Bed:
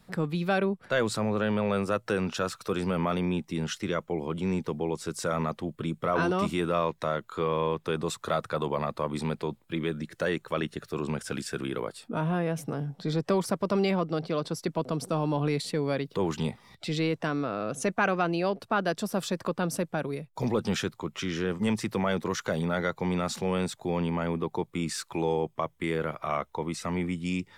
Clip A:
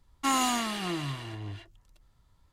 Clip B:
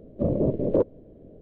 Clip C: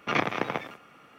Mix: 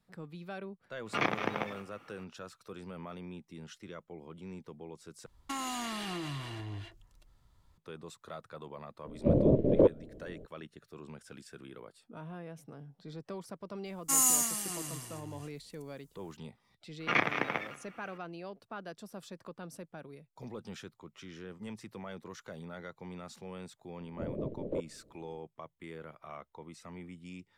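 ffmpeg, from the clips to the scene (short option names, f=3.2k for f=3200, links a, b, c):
-filter_complex "[3:a]asplit=2[a][b];[1:a]asplit=2[c][d];[2:a]asplit=2[e][f];[0:a]volume=-16.5dB[g];[c]acompressor=threshold=-38dB:ratio=10:attack=39:release=21:knee=6:detection=rms[h];[d]aexciter=amount=12.1:drive=4.1:freq=5.6k[i];[b]equalizer=f=2k:w=1.4:g=7[j];[g]asplit=2[k][l];[k]atrim=end=5.264[m];[h]atrim=end=2.52,asetpts=PTS-STARTPTS,volume=-1dB[n];[l]atrim=start=7.776[o];[a]atrim=end=1.18,asetpts=PTS-STARTPTS,volume=-4.5dB,afade=t=in:d=0.004:c=hsin,afade=t=out:st=1.176:d=0.004:c=hsin,adelay=1060[p];[e]atrim=end=1.41,asetpts=PTS-STARTPTS,volume=-1dB,afade=t=in:d=0.004:c=hsin,afade=t=out:st=1.406:d=0.004:c=hsin,adelay=9050[q];[i]atrim=end=2.52,asetpts=PTS-STARTPTS,volume=-10.5dB,afade=t=in:d=0.004:c=hsin,afade=t=out:st=2.516:d=0.004:c=hsin,adelay=13850[r];[j]atrim=end=1.18,asetpts=PTS-STARTPTS,volume=-5.5dB,afade=t=in:d=0.004:c=hsin,afade=t=out:st=1.176:d=0.004:c=hsin,adelay=749700S[s];[f]atrim=end=1.41,asetpts=PTS-STARTPTS,volume=-14dB,afade=t=in:d=0.004:c=hsin,afade=t=out:st=1.406:d=0.004:c=hsin,adelay=23980[t];[m][n]acrossfade=d=0.004:c1=hsin:c2=hsin[u];[u][o]acrossfade=d=0.004:c1=hsin:c2=hsin[v];[v][p][q][r][s][t]amix=inputs=6:normalize=0"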